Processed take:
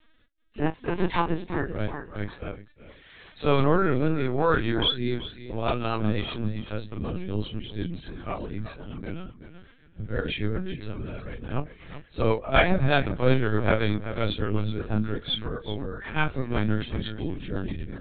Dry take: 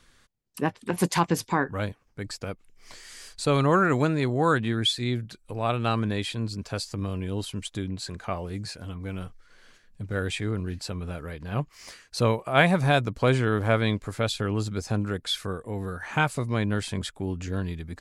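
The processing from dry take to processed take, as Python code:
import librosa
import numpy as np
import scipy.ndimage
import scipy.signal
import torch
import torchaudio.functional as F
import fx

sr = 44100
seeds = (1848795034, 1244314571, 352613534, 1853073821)

y = fx.frame_reverse(x, sr, frame_ms=76.0)
y = fx.echo_feedback(y, sr, ms=376, feedback_pct=18, wet_db=-12.0)
y = fx.rotary_switch(y, sr, hz=0.8, then_hz=8.0, switch_at_s=4.76)
y = fx.lpc_vocoder(y, sr, seeds[0], excitation='pitch_kept', order=16)
y = y * 10.0 ** (5.5 / 20.0)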